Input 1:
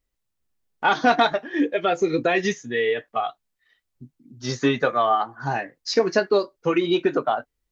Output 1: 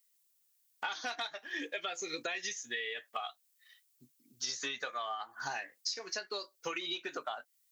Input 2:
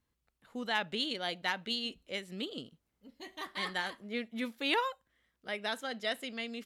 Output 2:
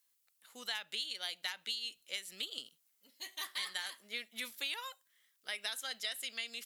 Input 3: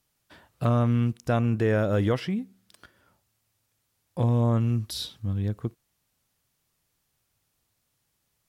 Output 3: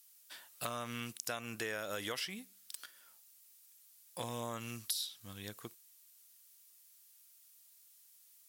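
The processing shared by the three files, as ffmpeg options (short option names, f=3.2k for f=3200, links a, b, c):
-af "aderivative,acompressor=threshold=-46dB:ratio=16,volume=11.5dB"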